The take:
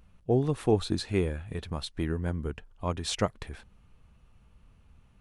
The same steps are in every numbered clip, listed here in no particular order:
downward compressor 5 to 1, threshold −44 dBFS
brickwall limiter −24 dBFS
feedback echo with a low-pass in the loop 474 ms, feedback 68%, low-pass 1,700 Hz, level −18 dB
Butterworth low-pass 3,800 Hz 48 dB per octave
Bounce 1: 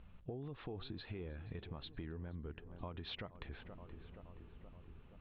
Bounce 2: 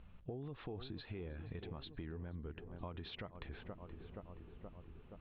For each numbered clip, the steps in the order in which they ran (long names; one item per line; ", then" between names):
Butterworth low-pass, then brickwall limiter, then feedback echo with a low-pass in the loop, then downward compressor
feedback echo with a low-pass in the loop, then brickwall limiter, then downward compressor, then Butterworth low-pass